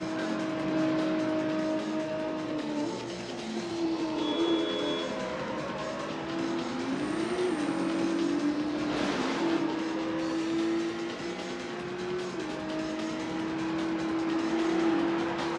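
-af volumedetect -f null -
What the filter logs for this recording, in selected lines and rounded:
mean_volume: -30.6 dB
max_volume: -17.1 dB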